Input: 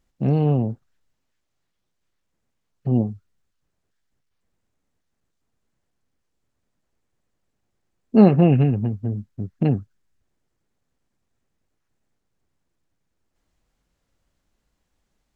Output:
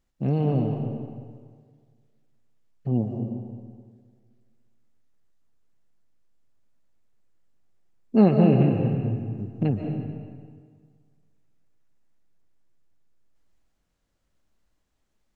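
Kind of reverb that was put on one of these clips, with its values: algorithmic reverb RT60 1.8 s, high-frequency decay 0.8×, pre-delay 105 ms, DRR 3 dB; trim -4.5 dB

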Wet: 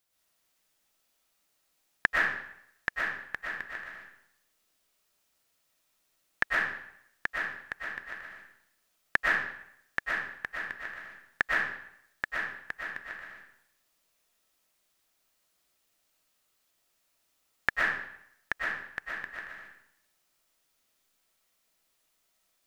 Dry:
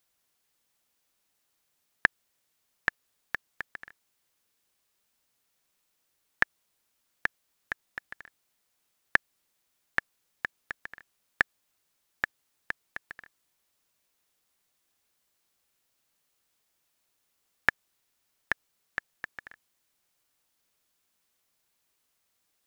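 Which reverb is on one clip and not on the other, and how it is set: algorithmic reverb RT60 0.72 s, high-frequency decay 0.9×, pre-delay 80 ms, DRR -5 dB; trim -3.5 dB

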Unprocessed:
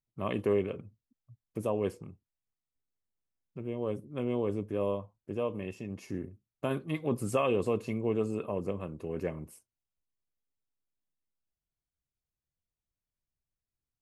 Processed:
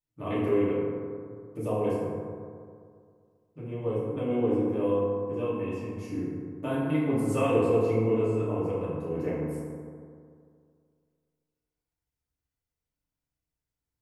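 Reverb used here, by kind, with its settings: FDN reverb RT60 2.2 s, low-frequency decay 1×, high-frequency decay 0.35×, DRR -9.5 dB; trim -6.5 dB

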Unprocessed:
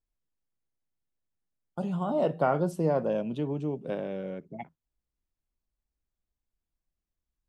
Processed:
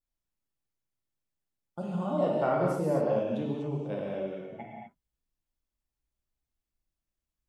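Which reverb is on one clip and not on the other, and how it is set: gated-style reverb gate 270 ms flat, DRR -3 dB; trim -5 dB

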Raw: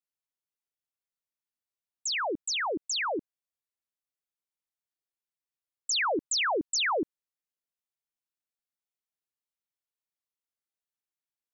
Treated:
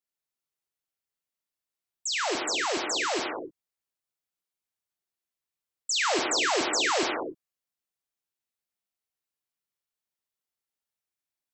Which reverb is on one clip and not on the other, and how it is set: gated-style reverb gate 320 ms flat, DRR 1 dB

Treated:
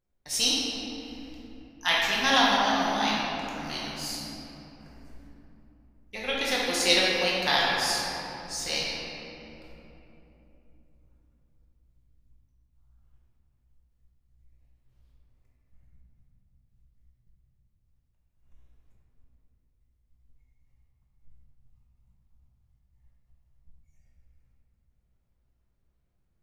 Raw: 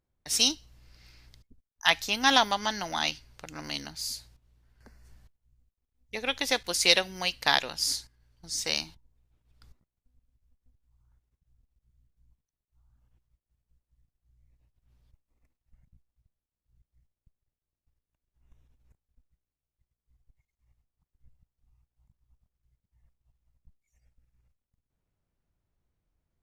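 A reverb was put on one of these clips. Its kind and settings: simulated room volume 170 m³, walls hard, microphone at 0.96 m; trim -4.5 dB

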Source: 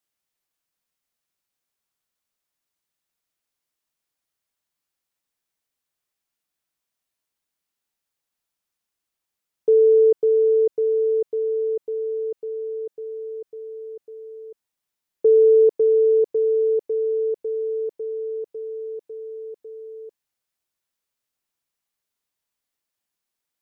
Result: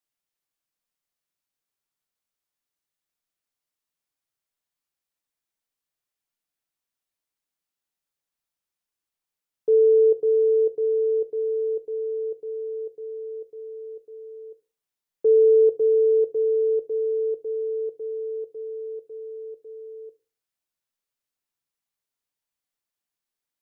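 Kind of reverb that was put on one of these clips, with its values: simulated room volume 150 m³, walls furnished, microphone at 0.38 m; trim -5 dB

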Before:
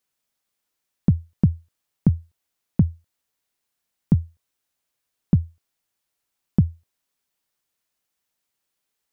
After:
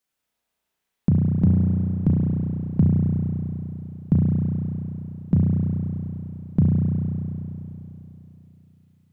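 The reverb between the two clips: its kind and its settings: spring tank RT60 3.4 s, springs 33 ms, chirp 30 ms, DRR -5 dB; trim -2.5 dB

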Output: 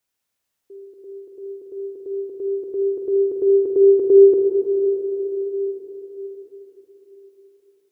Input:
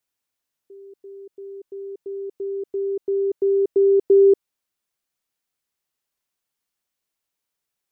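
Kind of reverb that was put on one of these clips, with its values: plate-style reverb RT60 4.9 s, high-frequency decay 0.75×, DRR -0.5 dB; trim +2 dB

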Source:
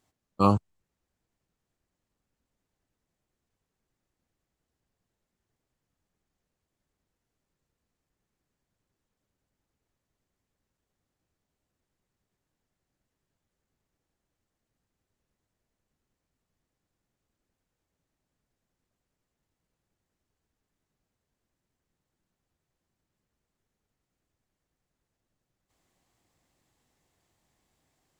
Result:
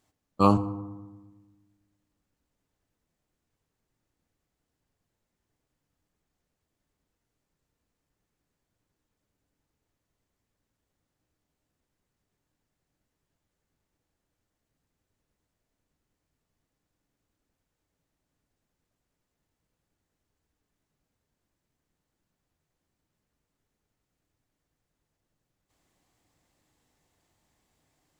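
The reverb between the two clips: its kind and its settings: FDN reverb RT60 1.2 s, low-frequency decay 1.4×, high-frequency decay 0.45×, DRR 11.5 dB; trim +1 dB

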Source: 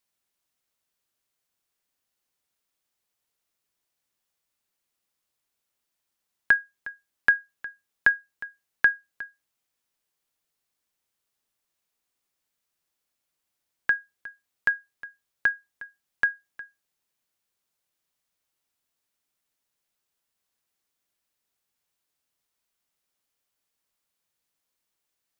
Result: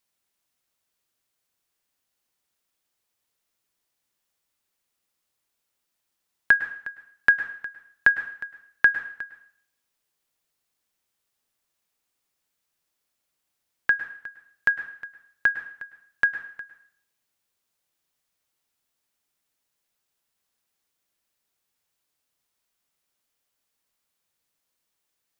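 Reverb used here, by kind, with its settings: plate-style reverb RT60 0.58 s, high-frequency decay 0.95×, pre-delay 95 ms, DRR 10.5 dB; trim +2 dB

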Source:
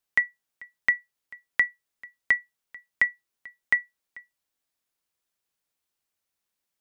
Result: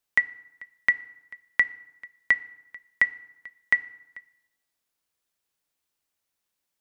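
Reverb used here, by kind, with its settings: FDN reverb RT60 0.89 s, low-frequency decay 1.1×, high-frequency decay 0.7×, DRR 15.5 dB; trim +1.5 dB

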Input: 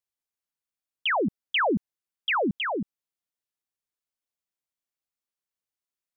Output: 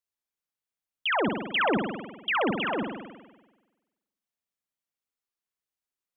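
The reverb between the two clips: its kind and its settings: spring tank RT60 1.2 s, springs 46 ms, chirp 40 ms, DRR 3 dB; trim -2 dB

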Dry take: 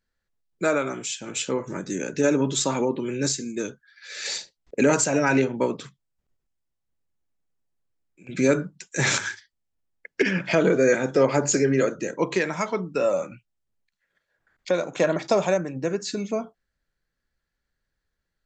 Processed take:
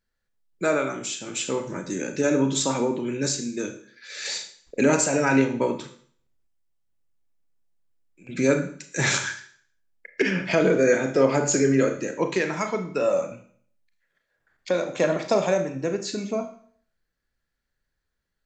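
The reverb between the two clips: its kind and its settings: Schroeder reverb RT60 0.54 s, combs from 26 ms, DRR 7 dB; trim -1 dB

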